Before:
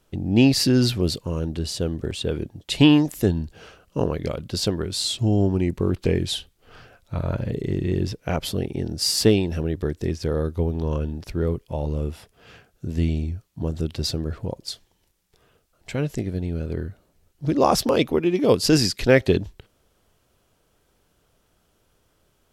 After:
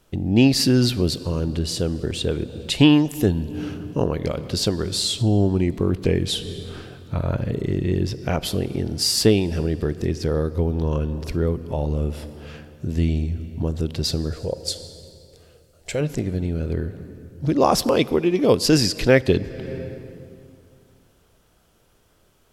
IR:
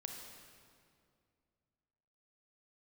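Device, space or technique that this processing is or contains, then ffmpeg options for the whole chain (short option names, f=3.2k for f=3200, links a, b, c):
ducked reverb: -filter_complex "[0:a]asplit=3[a][b][c];[1:a]atrim=start_sample=2205[d];[b][d]afir=irnorm=-1:irlink=0[e];[c]apad=whole_len=993521[f];[e][f]sidechaincompress=threshold=-28dB:ratio=8:attack=12:release=348,volume=0.5dB[g];[a][g]amix=inputs=2:normalize=0,asettb=1/sr,asplit=3[h][i][j];[h]atrim=end=14.324[k];[i]atrim=start=14.32:end=16.01,asetpts=PTS-STARTPTS,afade=t=in:d=0.004:c=qsin,afade=t=out:st=1.686:d=0.004:c=qsin,equalizer=f=125:t=o:w=1:g=-4,equalizer=f=250:t=o:w=1:g=-8,equalizer=f=500:t=o:w=1:g=8,equalizer=f=1k:t=o:w=1:g=-7,equalizer=f=8k:t=o:w=1:g=6[l];[j]atrim=start=16.006[m];[k][l]acrossfade=d=0.004:c1=hsin:c2=qsin[n];[n][m]acrossfade=d=0.004:c1=qsin:c2=hsin"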